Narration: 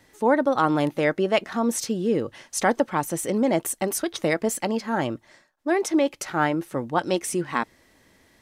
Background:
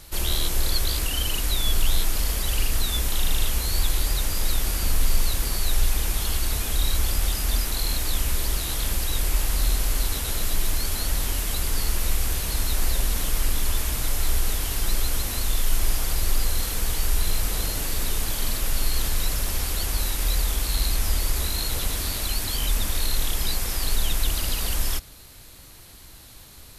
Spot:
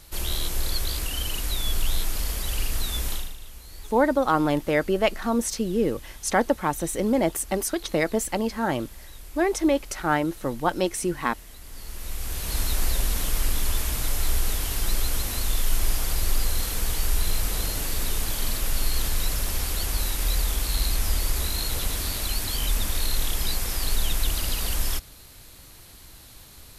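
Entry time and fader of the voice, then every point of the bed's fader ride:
3.70 s, -0.5 dB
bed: 3.13 s -3.5 dB
3.37 s -19 dB
11.6 s -19 dB
12.57 s -1 dB

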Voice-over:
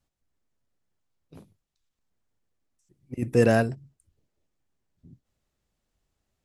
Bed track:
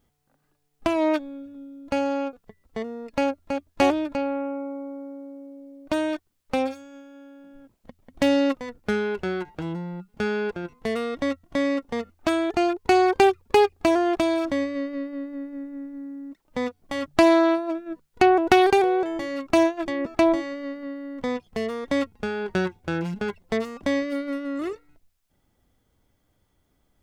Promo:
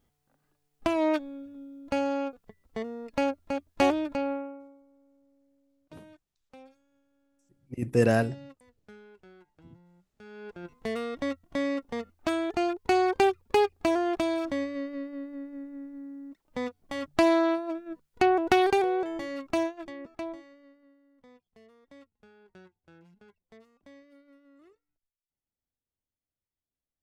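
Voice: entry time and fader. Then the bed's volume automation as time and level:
4.60 s, -2.5 dB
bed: 4.32 s -3.5 dB
4.86 s -26.5 dB
10.18 s -26.5 dB
10.72 s -5.5 dB
19.32 s -5.5 dB
21.06 s -29 dB

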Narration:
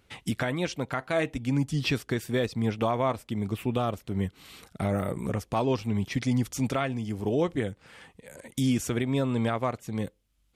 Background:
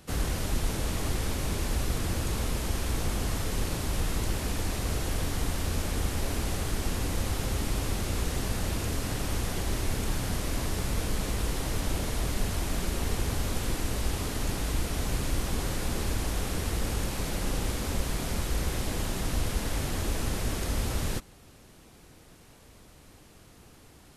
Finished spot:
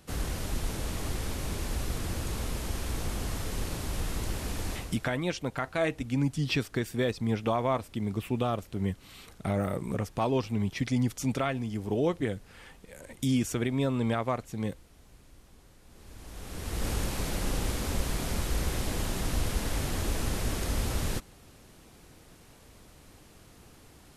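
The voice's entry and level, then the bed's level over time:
4.65 s, -1.5 dB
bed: 4.73 s -3.5 dB
5.18 s -26.5 dB
15.83 s -26.5 dB
16.87 s -0.5 dB

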